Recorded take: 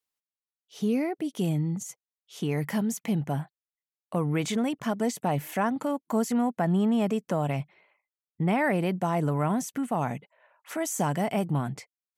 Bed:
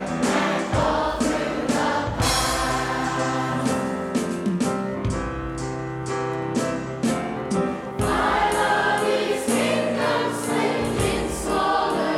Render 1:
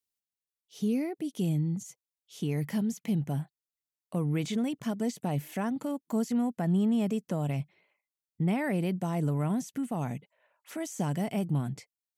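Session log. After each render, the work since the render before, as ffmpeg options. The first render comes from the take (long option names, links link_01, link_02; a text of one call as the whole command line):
ffmpeg -i in.wav -filter_complex "[0:a]acrossover=split=5300[link_01][link_02];[link_02]acompressor=threshold=-46dB:ratio=4:attack=1:release=60[link_03];[link_01][link_03]amix=inputs=2:normalize=0,equalizer=frequency=1100:width=0.47:gain=-10" out.wav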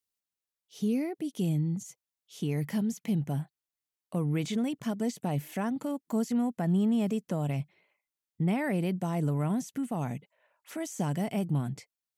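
ffmpeg -i in.wav -filter_complex "[0:a]asettb=1/sr,asplit=3[link_01][link_02][link_03];[link_01]atrim=end=6.684[link_04];[link_02]atrim=start=6.68:end=7.14,asetpts=PTS-STARTPTS,afade=type=in:duration=0.004:curve=qsin,afade=type=out:start_time=0.456:duration=0.004:curve=qsin,aeval=exprs='val(0)*gte(abs(val(0)),0.00188)':channel_layout=same[link_05];[link_03]atrim=start=7.136[link_06];[link_04][link_05]acrossfade=duration=0.004:curve1=hsin:curve2=qsin[link_07];[link_07][link_06]acrossfade=duration=0.004:curve1=qsin:curve2=hsin" out.wav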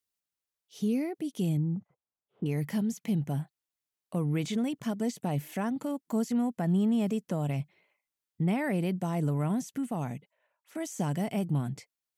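ffmpeg -i in.wav -filter_complex "[0:a]asettb=1/sr,asplit=3[link_01][link_02][link_03];[link_01]atrim=end=1.574[link_04];[link_02]atrim=start=1.57:end=2.46,asetpts=PTS-STARTPTS,afade=type=in:duration=0.004:curve=qsin,afade=type=out:start_time=0.886:duration=0.004:curve=qsin,lowpass=frequency=1300:width=0.5412,lowpass=frequency=1300:width=1.3066[link_05];[link_03]atrim=start=2.456[link_06];[link_04][link_05]acrossfade=duration=0.004:curve1=hsin:curve2=qsin[link_07];[link_07][link_06]acrossfade=duration=0.004:curve1=qsin:curve2=hsin,asplit=2[link_08][link_09];[link_08]atrim=end=10.75,asetpts=PTS-STARTPTS,afade=type=out:start_time=9.9:duration=0.85:silence=0.266073[link_10];[link_09]atrim=start=10.75,asetpts=PTS-STARTPTS,afade=type=in:duration=0.004:curve=hsin:silence=0.266073[link_11];[link_10][link_11]concat=n=2:v=0:a=1" out.wav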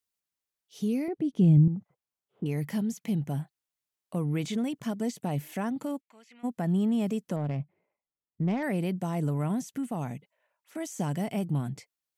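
ffmpeg -i in.wav -filter_complex "[0:a]asettb=1/sr,asplit=3[link_01][link_02][link_03];[link_01]atrim=end=1.084[link_04];[link_02]atrim=start=1.08:end=1.68,asetpts=PTS-STARTPTS,afade=type=in:duration=0.004:curve=qsin,afade=type=out:start_time=0.596:duration=0.004:curve=qsin,aemphasis=mode=reproduction:type=riaa[link_05];[link_03]atrim=start=1.676[link_06];[link_04][link_05]acrossfade=duration=0.004:curve1=hsin:curve2=qsin[link_07];[link_07][link_06]acrossfade=duration=0.004:curve1=qsin:curve2=hsin,asplit=3[link_08][link_09][link_10];[link_08]afade=type=out:start_time=6:duration=0.02[link_11];[link_09]bandpass=frequency=2400:width_type=q:width=3.5,afade=type=in:start_time=6:duration=0.02,afade=type=out:start_time=6.43:duration=0.02[link_12];[link_10]afade=type=in:start_time=6.43:duration=0.02[link_13];[link_11][link_12][link_13]amix=inputs=3:normalize=0,asettb=1/sr,asplit=3[link_14][link_15][link_16];[link_14]atrim=end=7.364[link_17];[link_15]atrim=start=7.36:end=8.63,asetpts=PTS-STARTPTS,afade=type=in:duration=0.004:curve=qsin,afade=type=out:start_time=1.266:duration=0.004:curve=qsin,adynamicsmooth=sensitivity=3.5:basefreq=1000[link_18];[link_16]atrim=start=8.626[link_19];[link_17][link_18]acrossfade=duration=0.004:curve1=hsin:curve2=qsin[link_20];[link_20][link_19]acrossfade=duration=0.004:curve1=qsin:curve2=hsin" out.wav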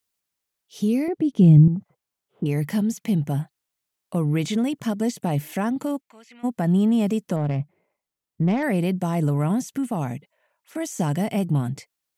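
ffmpeg -i in.wav -af "volume=7dB" out.wav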